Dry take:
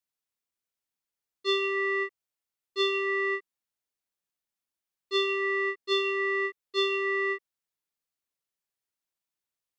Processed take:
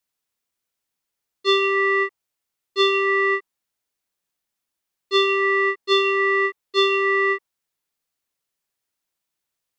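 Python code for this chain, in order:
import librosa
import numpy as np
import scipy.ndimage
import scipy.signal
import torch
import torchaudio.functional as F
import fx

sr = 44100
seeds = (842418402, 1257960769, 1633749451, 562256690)

y = fx.dynamic_eq(x, sr, hz=910.0, q=1.7, threshold_db=-47.0, ratio=4.0, max_db=7)
y = F.gain(torch.from_numpy(y), 7.5).numpy()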